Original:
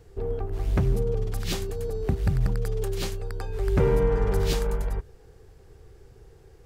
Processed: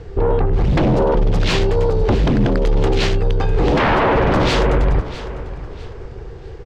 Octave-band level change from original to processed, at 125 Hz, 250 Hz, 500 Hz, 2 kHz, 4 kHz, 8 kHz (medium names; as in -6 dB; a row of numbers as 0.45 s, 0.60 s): +8.5 dB, +14.0 dB, +10.5 dB, +17.0 dB, +13.0 dB, +4.0 dB